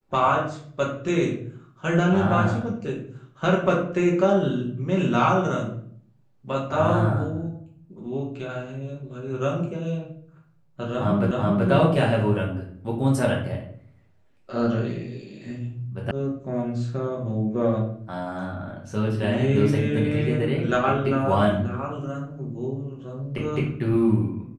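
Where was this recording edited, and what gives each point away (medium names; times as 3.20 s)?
11.31 s: repeat of the last 0.38 s
16.11 s: sound stops dead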